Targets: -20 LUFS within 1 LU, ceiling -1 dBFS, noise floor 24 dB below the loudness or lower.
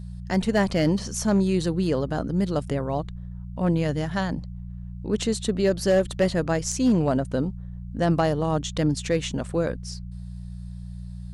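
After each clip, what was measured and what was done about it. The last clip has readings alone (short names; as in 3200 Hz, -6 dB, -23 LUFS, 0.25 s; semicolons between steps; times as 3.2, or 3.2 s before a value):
clipped 0.3%; flat tops at -13.0 dBFS; hum 60 Hz; harmonics up to 180 Hz; hum level -33 dBFS; loudness -24.5 LUFS; peak -13.0 dBFS; loudness target -20.0 LUFS
-> clip repair -13 dBFS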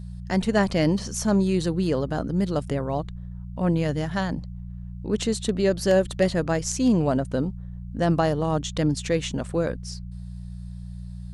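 clipped 0.0%; hum 60 Hz; harmonics up to 180 Hz; hum level -33 dBFS
-> de-hum 60 Hz, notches 3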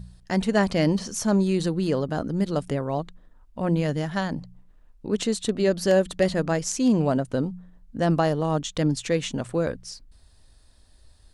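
hum none; loudness -25.0 LUFS; peak -8.5 dBFS; loudness target -20.0 LUFS
-> gain +5 dB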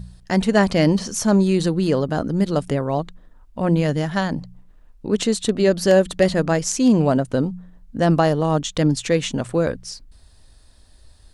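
loudness -20.0 LUFS; peak -3.5 dBFS; noise floor -50 dBFS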